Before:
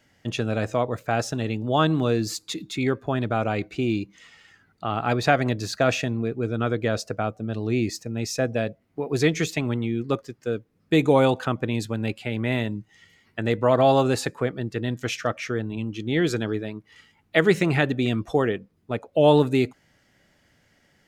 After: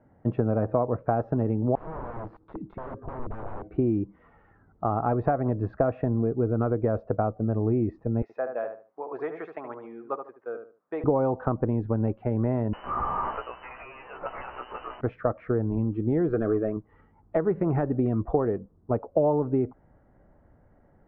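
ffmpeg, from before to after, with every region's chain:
-filter_complex "[0:a]asettb=1/sr,asplit=3[s0][s1][s2];[s0]atrim=end=1.754[s3];[s1]atrim=start=1.75:end=3.77,asetpts=PTS-STARTPTS,afade=t=in:d=0.004:c=qsin,afade=t=out:st=2.016:d=0.004:c=qsin,aeval=exprs='(mod(15.8*val(0)+1,2)-1)/15.8':c=same,acompressor=threshold=0.0158:ratio=10:attack=3.2:release=140:knee=1:detection=peak[s4];[s2]atrim=start=3.766[s5];[s3][s4]acrossfade=d=0.004:c1=hsin:c2=qsin[s6];[s6][s5]acrossfade=d=0.004:c1=qsin:c2=hsin,asettb=1/sr,asplit=3[s7][s8][s9];[s7]atrim=end=8.224[s10];[s8]atrim=start=8.22:end=11.04,asetpts=PTS-STARTPTS,afade=t=in:d=0.004:c=qsin,afade=t=out:st=2.816:d=0.004:c=qsin,highpass=940,asplit=2[s11][s12];[s12]adelay=74,lowpass=f=1900:p=1,volume=0.447,asplit=2[s13][s14];[s14]adelay=74,lowpass=f=1900:p=1,volume=0.28,asplit=2[s15][s16];[s16]adelay=74,lowpass=f=1900:p=1,volume=0.28[s17];[s11][s13][s15][s17]amix=inputs=4:normalize=0,atrim=end_sample=124362[s18];[s9]atrim=start=11.036[s19];[s10][s18]acrossfade=d=0.004:c1=hsin:c2=qsin[s20];[s20][s19]acrossfade=d=0.004:c1=qsin:c2=hsin,asettb=1/sr,asplit=3[s21][s22][s23];[s21]atrim=end=12.734[s24];[s22]atrim=start=12.73:end=15.01,asetpts=PTS-STARTPTS,afade=t=in:d=0.004:c=qsin,afade=t=out:st=2.276:d=0.004:c=qsin,aeval=exprs='val(0)+0.5*0.0891*sgn(val(0))':c=same,lowpass=f=2600:t=q:w=0.5098,lowpass=f=2600:t=q:w=0.6013,lowpass=f=2600:t=q:w=0.9,lowpass=f=2600:t=q:w=2.563,afreqshift=-3100,asplit=2[s25][s26];[s26]adelay=16,volume=0.668[s27];[s25][s27]amix=inputs=2:normalize=0,atrim=end_sample=100548[s28];[s23]atrim=start=15.006[s29];[s24][s28]acrossfade=d=0.004:c1=hsin:c2=qsin[s30];[s30][s29]acrossfade=d=0.004:c1=qsin:c2=hsin,asettb=1/sr,asplit=3[s31][s32][s33];[s31]atrim=end=16.334[s34];[s32]atrim=start=16.33:end=16.77,asetpts=PTS-STARTPTS,afade=t=in:d=0.004:c=qsin,afade=t=out:st=0.436:d=0.004:c=qsin,asplit=2[s35][s36];[s36]highpass=f=720:p=1,volume=5.62,asoftclip=type=tanh:threshold=0.224[s37];[s35][s37]amix=inputs=2:normalize=0,lowpass=f=2300:p=1,volume=0.501,asuperstop=centerf=900:order=4:qfactor=2.7[s38];[s33]atrim=start=16.766[s39];[s34][s38]acrossfade=d=0.004:c1=hsin:c2=qsin[s40];[s40][s39]acrossfade=d=0.004:c1=qsin:c2=hsin,acompressor=threshold=0.0631:ratio=10,asubboost=boost=3:cutoff=71,lowpass=f=1100:w=0.5412,lowpass=f=1100:w=1.3066,volume=1.88"

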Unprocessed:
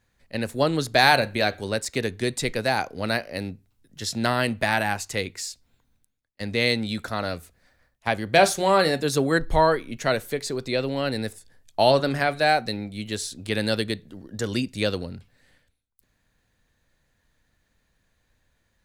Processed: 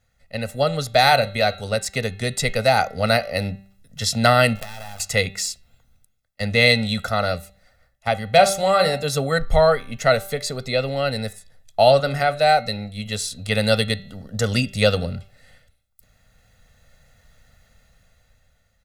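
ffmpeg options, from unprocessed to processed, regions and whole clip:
-filter_complex "[0:a]asettb=1/sr,asplit=3[s0][s1][s2];[s0]atrim=end=4.554[s3];[s1]atrim=start=4.55:end=5,asetpts=PTS-STARTPTS,afade=t=in:d=0.004:c=qsin,afade=t=out:st=0.446:d=0.004:c=qsin,acompressor=threshold=0.0141:ratio=5:attack=3.2:release=140:knee=1:detection=peak,acrusher=bits=5:dc=4:mix=0:aa=0.000001[s4];[s2]atrim=start=4.996[s5];[s3][s4]acrossfade=d=0.004:c1=hsin:c2=qsin[s6];[s6][s5]acrossfade=d=0.004:c1=qsin:c2=hsin,aecho=1:1:1.5:0.89,bandreject=f=195.1:t=h:w=4,bandreject=f=390.2:t=h:w=4,bandreject=f=585.3:t=h:w=4,bandreject=f=780.4:t=h:w=4,bandreject=f=975.5:t=h:w=4,bandreject=f=1170.6:t=h:w=4,bandreject=f=1365.7:t=h:w=4,bandreject=f=1560.8:t=h:w=4,bandreject=f=1755.9:t=h:w=4,bandreject=f=1951:t=h:w=4,bandreject=f=2146.1:t=h:w=4,bandreject=f=2341.2:t=h:w=4,bandreject=f=2536.3:t=h:w=4,bandreject=f=2731.4:t=h:w=4,bandreject=f=2926.5:t=h:w=4,bandreject=f=3121.6:t=h:w=4,bandreject=f=3316.7:t=h:w=4,bandreject=f=3511.8:t=h:w=4,bandreject=f=3706.9:t=h:w=4,bandreject=f=3902:t=h:w=4,bandreject=f=4097.1:t=h:w=4,bandreject=f=4292.2:t=h:w=4,dynaudnorm=f=360:g=7:m=3.76,volume=0.891"

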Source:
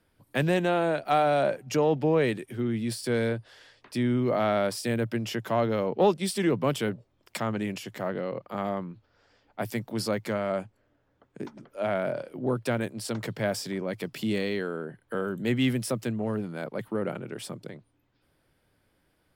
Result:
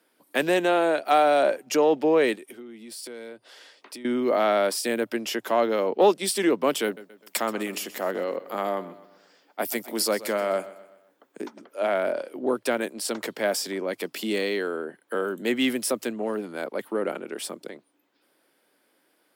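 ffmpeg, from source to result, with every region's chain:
-filter_complex "[0:a]asettb=1/sr,asplit=3[s0][s1][s2];[s0]atrim=end=2.354[s3];[s1]atrim=start=2.35:end=4.05,asetpts=PTS-STARTPTS,afade=t=in:d=0.004:c=qsin,afade=t=out:st=1.696:d=0.004:c=qsin,bandreject=f=1700:w=13,acompressor=threshold=0.00794:ratio=4:attack=3.2:release=140:knee=1:detection=peak[s4];[s2]atrim=start=4.046[s5];[s3][s4]acrossfade=d=0.004:c1=hsin:c2=qsin[s6];[s6][s5]acrossfade=d=0.004:c1=qsin:c2=hsin,asettb=1/sr,asplit=3[s7][s8][s9];[s7]atrim=end=6.844[s10];[s8]atrim=start=6.84:end=11.42,asetpts=PTS-STARTPTS,afade=t=in:d=0.004:c=qsin,afade=t=out:st=4.576:d=0.004:c=qsin,highshelf=f=8700:g=9,aecho=1:1:127|254|381|508:0.15|0.0688|0.0317|0.0146,atrim=end_sample=201978[s11];[s9]atrim=start=11.416[s12];[s10][s11]acrossfade=d=0.004:c1=hsin:c2=qsin[s13];[s13][s12]acrossfade=d=0.004:c1=qsin:c2=hsin,highpass=f=260:w=0.5412,highpass=f=260:w=1.3066,highshelf=f=6900:g=5.5,volume=1.58"

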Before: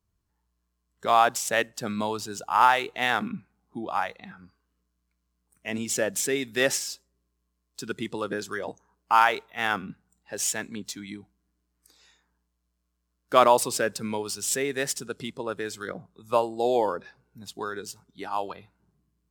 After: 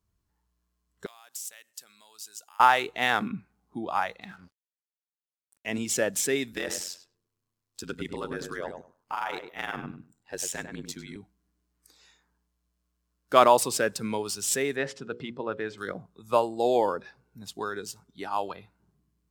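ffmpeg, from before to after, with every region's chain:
-filter_complex "[0:a]asettb=1/sr,asplit=3[s0][s1][s2];[s0]atrim=end=1.064[s3];[s1]atrim=start=1.06:end=2.6,asetpts=PTS-STARTPTS,afade=t=in:d=0.004:c=qsin,afade=t=out:st=1.536:d=0.004:c=qsin,acompressor=threshold=0.02:ratio=6:attack=3.2:release=140:knee=1:detection=peak,aderivative[s4];[s2]atrim=start=2.596[s5];[s3][s4]acrossfade=d=0.004:c1=hsin:c2=qsin[s6];[s6][s5]acrossfade=d=0.004:c1=qsin:c2=hsin,asettb=1/sr,asplit=3[s7][s8][s9];[s7]atrim=end=4.214[s10];[s8]atrim=start=4.21:end=5.67,asetpts=PTS-STARTPTS,afade=t=in:d=0.004:c=qsin,afade=t=out:st=1.456:d=0.004:c=qsin,equalizer=f=5200:t=o:w=2.5:g=5,bandreject=f=54.82:t=h:w=4,bandreject=f=109.64:t=h:w=4,bandreject=f=164.46:t=h:w=4,bandreject=f=219.28:t=h:w=4,bandreject=f=274.1:t=h:w=4,bandreject=f=328.92:t=h:w=4,bandreject=f=383.74:t=h:w=4,bandreject=f=438.56:t=h:w=4,bandreject=f=493.38:t=h:w=4,bandreject=f=548.2:t=h:w=4,bandreject=f=603.02:t=h:w=4,bandreject=f=657.84:t=h:w=4,bandreject=f=712.66:t=h:w=4,aeval=exprs='sgn(val(0))*max(abs(val(0))-0.00119,0)':c=same[s11];[s9]atrim=start=5.666[s12];[s10][s11]acrossfade=d=0.004:c1=hsin:c2=qsin[s13];[s13][s12]acrossfade=d=0.004:c1=qsin:c2=hsin,asettb=1/sr,asplit=3[s14][s15][s16];[s14]atrim=end=6.524[s17];[s15]atrim=start=6.52:end=11.16,asetpts=PTS-STARTPTS,afade=t=in:d=0.004:c=qsin,afade=t=out:st=4.636:d=0.004:c=qsin,acompressor=threshold=0.0562:ratio=5:attack=3.2:release=140:knee=1:detection=peak,aeval=exprs='val(0)*sin(2*PI*45*n/s)':c=same,asplit=2[s18][s19];[s19]adelay=100,lowpass=f=1700:p=1,volume=0.501,asplit=2[s20][s21];[s21]adelay=100,lowpass=f=1700:p=1,volume=0.18,asplit=2[s22][s23];[s23]adelay=100,lowpass=f=1700:p=1,volume=0.18[s24];[s18][s20][s22][s24]amix=inputs=4:normalize=0,atrim=end_sample=204624[s25];[s16]atrim=start=11.156[s26];[s17][s25]acrossfade=d=0.004:c1=hsin:c2=qsin[s27];[s27][s26]acrossfade=d=0.004:c1=qsin:c2=hsin,asettb=1/sr,asplit=3[s28][s29][s30];[s28]atrim=end=14.764[s31];[s29]atrim=start=14.76:end=15.78,asetpts=PTS-STARTPTS,afade=t=in:d=0.004:c=qsin,afade=t=out:st=1.016:d=0.004:c=qsin,lowpass=2800,bandreject=f=60:t=h:w=6,bandreject=f=120:t=h:w=6,bandreject=f=180:t=h:w=6,bandreject=f=240:t=h:w=6,bandreject=f=300:t=h:w=6,bandreject=f=360:t=h:w=6,bandreject=f=420:t=h:w=6,bandreject=f=480:t=h:w=6,bandreject=f=540:t=h:w=6[s32];[s30]atrim=start=15.776[s33];[s31][s32]acrossfade=d=0.004:c1=hsin:c2=qsin[s34];[s34][s33]acrossfade=d=0.004:c1=qsin:c2=hsin"

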